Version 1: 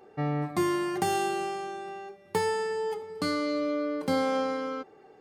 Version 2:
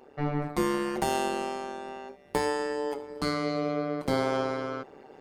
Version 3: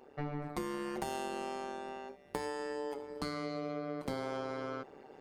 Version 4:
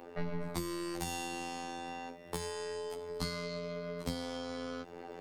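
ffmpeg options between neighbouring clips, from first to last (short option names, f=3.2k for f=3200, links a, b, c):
-af "areverse,acompressor=mode=upward:threshold=-42dB:ratio=2.5,areverse,tremolo=f=140:d=0.919,volume=3.5dB"
-af "acompressor=threshold=-30dB:ratio=6,volume=-4dB"
-filter_complex "[0:a]afftfilt=real='hypot(re,im)*cos(PI*b)':imag='0':win_size=2048:overlap=0.75,acrossover=split=170|3000[a][b][c];[b]acompressor=threshold=-51dB:ratio=6[d];[a][d][c]amix=inputs=3:normalize=0,aeval=exprs='0.0224*(cos(1*acos(clip(val(0)/0.0224,-1,1)))-cos(1*PI/2))+0.000708*(cos(6*acos(clip(val(0)/0.0224,-1,1)))-cos(6*PI/2))':c=same,volume=11.5dB"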